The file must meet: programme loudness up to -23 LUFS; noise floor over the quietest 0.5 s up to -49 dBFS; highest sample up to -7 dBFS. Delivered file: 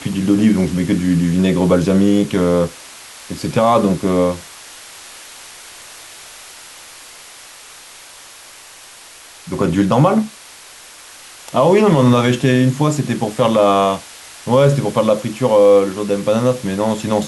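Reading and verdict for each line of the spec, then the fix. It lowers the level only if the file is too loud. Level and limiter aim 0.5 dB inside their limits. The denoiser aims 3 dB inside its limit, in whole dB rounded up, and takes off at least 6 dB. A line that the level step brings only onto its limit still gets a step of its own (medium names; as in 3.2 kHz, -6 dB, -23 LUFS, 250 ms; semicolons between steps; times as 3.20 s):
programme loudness -15.0 LUFS: fail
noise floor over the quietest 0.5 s -40 dBFS: fail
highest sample -3.0 dBFS: fail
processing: noise reduction 6 dB, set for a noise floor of -40 dBFS; trim -8.5 dB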